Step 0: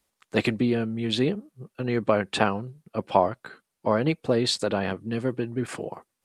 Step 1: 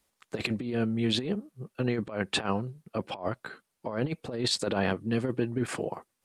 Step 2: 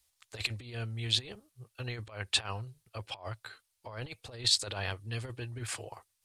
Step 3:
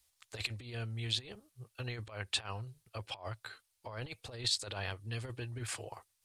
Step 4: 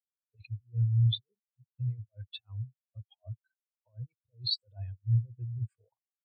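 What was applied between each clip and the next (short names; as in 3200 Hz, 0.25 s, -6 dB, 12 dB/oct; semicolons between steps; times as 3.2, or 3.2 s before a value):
negative-ratio compressor -26 dBFS, ratio -0.5; gain -2 dB
EQ curve 110 Hz 0 dB, 170 Hz -23 dB, 840 Hz -8 dB, 1400 Hz -7 dB, 4100 Hz +3 dB
compressor 1.5:1, threshold -40 dBFS, peak gain reduction 7 dB
spectral expander 4:1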